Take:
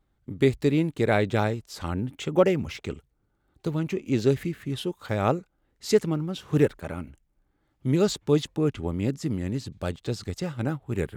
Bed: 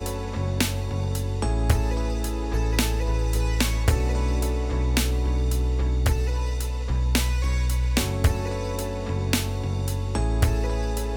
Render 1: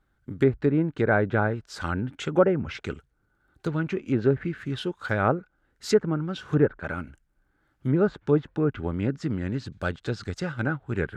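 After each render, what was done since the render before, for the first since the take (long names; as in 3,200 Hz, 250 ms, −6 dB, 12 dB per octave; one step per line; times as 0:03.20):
treble cut that deepens with the level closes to 1,200 Hz, closed at −19 dBFS
parametric band 1,500 Hz +12.5 dB 0.41 octaves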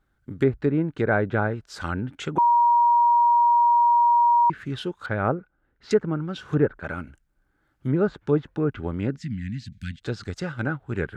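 0:02.38–0:04.50: beep over 950 Hz −14.5 dBFS
0:05.06–0:05.91: high-frequency loss of the air 300 metres
0:09.17–0:10.02: elliptic band-stop filter 230–1,900 Hz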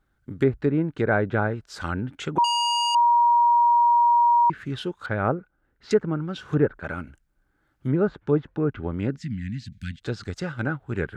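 0:02.44–0:02.95: saturating transformer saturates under 2,800 Hz
0:07.96–0:08.98: low-pass filter 3,000 Hz 6 dB per octave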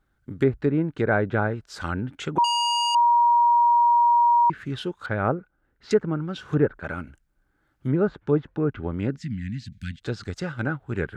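no processing that can be heard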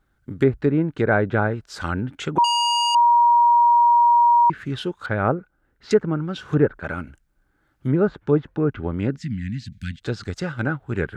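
level +3 dB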